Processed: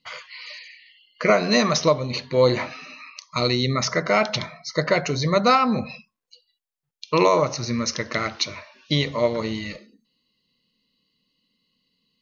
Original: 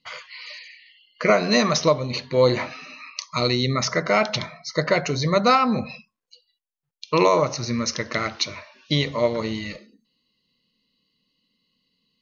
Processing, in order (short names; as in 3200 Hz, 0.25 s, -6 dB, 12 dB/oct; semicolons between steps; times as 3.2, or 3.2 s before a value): 2.92–3.36 compressor 6:1, threshold -37 dBFS, peak gain reduction 11.5 dB